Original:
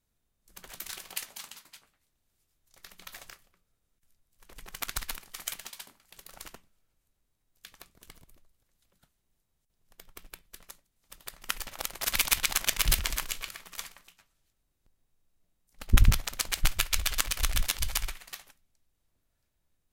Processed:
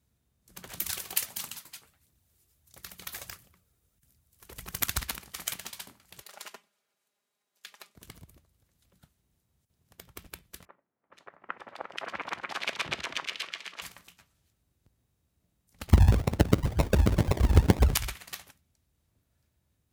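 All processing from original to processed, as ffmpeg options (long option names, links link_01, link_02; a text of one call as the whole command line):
ffmpeg -i in.wav -filter_complex "[0:a]asettb=1/sr,asplit=3[link_01][link_02][link_03];[link_01]atrim=end=0.774[link_04];[link_02]atrim=start=0.77:end=4.96,asetpts=PTS-STARTPTS,afade=type=in:duration=0.004:curve=qsin,afade=type=out:start_time=4.186:duration=0.004:curve=qsin,highshelf=frequency=7700:gain=8,aphaser=in_gain=1:out_gain=1:delay=2.9:decay=0.36:speed=1.5:type=triangular[link_05];[link_03]atrim=start=4.956[link_06];[link_04][link_05]acrossfade=duration=0.004:curve1=hsin:curve2=qsin[link_07];[link_07][link_06]acrossfade=duration=0.004:curve1=qsin:curve2=hsin,asettb=1/sr,asplit=3[link_08][link_09][link_10];[link_08]atrim=end=6.204[link_11];[link_09]atrim=start=6.2:end=7.96,asetpts=PTS-STARTPTS,afade=type=in:duration=0.004:curve=qsin,afade=type=out:start_time=1.756:duration=0.004:curve=qsin,highpass=540,highshelf=frequency=10000:gain=-8.5,aecho=1:1:4.9:0.65,atrim=end_sample=77616[link_12];[link_10]atrim=start=7.956[link_13];[link_11][link_12]acrossfade=duration=0.004:curve1=hsin:curve2=qsin[link_14];[link_14][link_13]acrossfade=duration=0.004:curve1=qsin:curve2=hsin,asettb=1/sr,asplit=3[link_15][link_16][link_17];[link_15]atrim=end=10.654[link_18];[link_16]atrim=start=10.65:end=13.82,asetpts=PTS-STARTPTS,afade=type=in:duration=0.004:curve=qsin,afade=type=out:start_time=3.166:duration=0.004:curve=qsin,highpass=370,lowpass=2600,acrossover=split=1900[link_19][link_20];[link_20]adelay=480[link_21];[link_19][link_21]amix=inputs=2:normalize=0,atrim=end_sample=139797[link_22];[link_17]atrim=start=13.816[link_23];[link_18][link_22]acrossfade=duration=0.004:curve1=hsin:curve2=qsin[link_24];[link_24][link_23]acrossfade=duration=0.004:curve1=qsin:curve2=hsin,asettb=1/sr,asplit=3[link_25][link_26][link_27];[link_25]atrim=end=15.924[link_28];[link_26]atrim=start=15.92:end=17.94,asetpts=PTS-STARTPTS,afade=type=in:duration=0.004:curve=qsin,afade=type=out:start_time=2.016:duration=0.004:curve=qsin,lowshelf=frequency=440:gain=7,acompressor=threshold=-17dB:ratio=10:attack=3.2:release=140:knee=1:detection=peak,acrusher=samples=40:mix=1:aa=0.000001:lfo=1:lforange=24:lforate=2[link_29];[link_27]atrim=start=17.936[link_30];[link_28][link_29]acrossfade=duration=0.004:curve1=hsin:curve2=qsin[link_31];[link_31][link_30]acrossfade=duration=0.004:curve1=qsin:curve2=hsin,highpass=frequency=61:width=0.5412,highpass=frequency=61:width=1.3066,lowshelf=frequency=230:gain=10.5,volume=2dB" out.wav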